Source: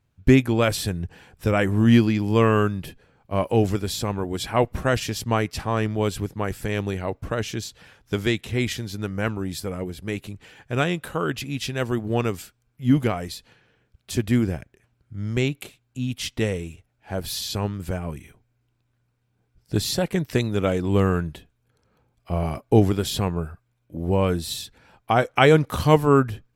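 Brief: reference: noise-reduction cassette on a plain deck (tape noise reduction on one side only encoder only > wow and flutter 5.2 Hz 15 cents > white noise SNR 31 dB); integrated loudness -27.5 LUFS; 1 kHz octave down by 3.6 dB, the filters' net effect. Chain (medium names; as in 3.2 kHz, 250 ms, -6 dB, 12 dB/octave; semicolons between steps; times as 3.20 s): peaking EQ 1 kHz -5 dB; tape noise reduction on one side only encoder only; wow and flutter 5.2 Hz 15 cents; white noise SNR 31 dB; trim -3.5 dB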